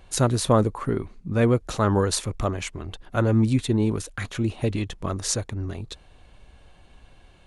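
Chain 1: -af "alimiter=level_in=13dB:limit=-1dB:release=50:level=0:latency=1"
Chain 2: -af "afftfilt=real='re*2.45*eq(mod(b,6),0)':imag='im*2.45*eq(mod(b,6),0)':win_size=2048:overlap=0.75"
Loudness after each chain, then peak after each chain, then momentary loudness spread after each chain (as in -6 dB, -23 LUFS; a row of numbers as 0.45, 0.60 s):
-13.0, -26.5 LUFS; -1.0, -5.0 dBFS; 10, 18 LU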